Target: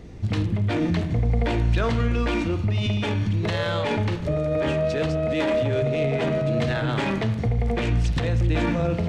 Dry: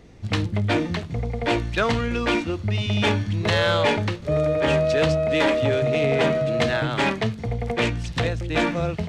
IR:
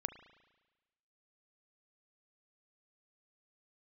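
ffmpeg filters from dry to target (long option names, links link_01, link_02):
-filter_complex "[0:a]lowshelf=frequency=400:gain=6.5,alimiter=limit=-18dB:level=0:latency=1:release=44[link_01];[1:a]atrim=start_sample=2205[link_02];[link_01][link_02]afir=irnorm=-1:irlink=0,volume=3dB"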